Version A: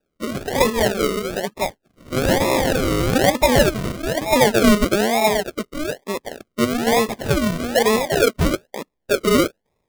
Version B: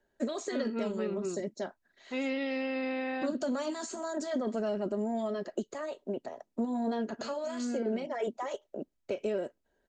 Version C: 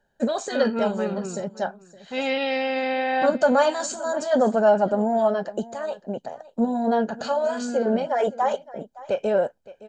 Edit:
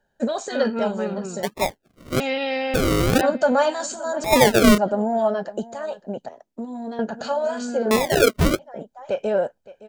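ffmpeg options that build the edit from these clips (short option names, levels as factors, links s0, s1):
-filter_complex "[0:a]asplit=4[s0][s1][s2][s3];[2:a]asplit=6[s4][s5][s6][s7][s8][s9];[s4]atrim=end=1.432[s10];[s0]atrim=start=1.428:end=2.202[s11];[s5]atrim=start=2.198:end=2.742[s12];[s1]atrim=start=2.738:end=3.212[s13];[s6]atrim=start=3.208:end=4.242[s14];[s2]atrim=start=4.238:end=4.782[s15];[s7]atrim=start=4.778:end=6.292[s16];[1:a]atrim=start=6.288:end=6.992[s17];[s8]atrim=start=6.988:end=7.912[s18];[s3]atrim=start=7.908:end=8.592[s19];[s9]atrim=start=8.588[s20];[s10][s11]acrossfade=d=0.004:c1=hsin:c2=hsin[s21];[s21][s12]acrossfade=d=0.004:c1=hsin:c2=hsin[s22];[s22][s13]acrossfade=d=0.004:c1=hsin:c2=hsin[s23];[s23][s14]acrossfade=d=0.004:c1=hsin:c2=hsin[s24];[s24][s15]acrossfade=d=0.004:c1=hsin:c2=hsin[s25];[s25][s16]acrossfade=d=0.004:c1=hsin:c2=hsin[s26];[s26][s17]acrossfade=d=0.004:c1=hsin:c2=hsin[s27];[s27][s18]acrossfade=d=0.004:c1=hsin:c2=hsin[s28];[s28][s19]acrossfade=d=0.004:c1=hsin:c2=hsin[s29];[s29][s20]acrossfade=d=0.004:c1=hsin:c2=hsin"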